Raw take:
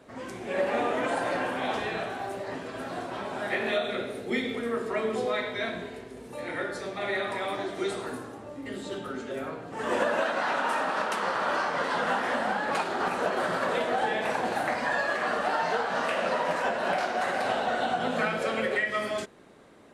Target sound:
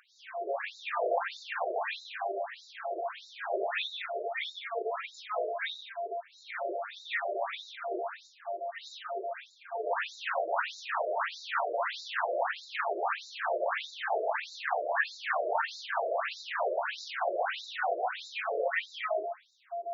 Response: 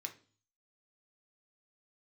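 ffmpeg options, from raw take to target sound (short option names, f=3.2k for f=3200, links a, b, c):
-filter_complex "[0:a]aeval=exprs='val(0)+0.0224*sin(2*PI*690*n/s)':c=same,asplit=2[a][b];[1:a]atrim=start_sample=2205,lowshelf=f=360:g=-11.5,adelay=87[c];[b][c]afir=irnorm=-1:irlink=0,volume=2.5dB[d];[a][d]amix=inputs=2:normalize=0,afftfilt=real='re*between(b*sr/1024,470*pow(5200/470,0.5+0.5*sin(2*PI*1.6*pts/sr))/1.41,470*pow(5200/470,0.5+0.5*sin(2*PI*1.6*pts/sr))*1.41)':imag='im*between(b*sr/1024,470*pow(5200/470,0.5+0.5*sin(2*PI*1.6*pts/sr))/1.41,470*pow(5200/470,0.5+0.5*sin(2*PI*1.6*pts/sr))*1.41)':win_size=1024:overlap=0.75"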